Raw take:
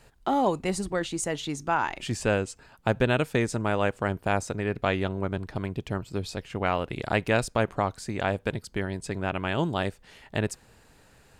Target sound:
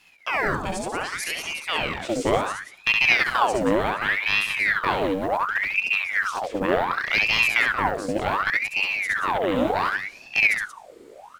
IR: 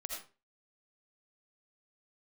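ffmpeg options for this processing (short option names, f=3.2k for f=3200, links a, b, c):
-filter_complex "[0:a]asubboost=boost=5.5:cutoff=150,acrusher=bits=9:mode=log:mix=0:aa=0.000001,aecho=1:1:67.06|180.8:0.708|0.355,asplit=2[a][b];[1:a]atrim=start_sample=2205[c];[b][c]afir=irnorm=-1:irlink=0,volume=-11dB[d];[a][d]amix=inputs=2:normalize=0,aeval=exprs='val(0)*sin(2*PI*1500*n/s+1500*0.75/0.68*sin(2*PI*0.68*n/s))':c=same"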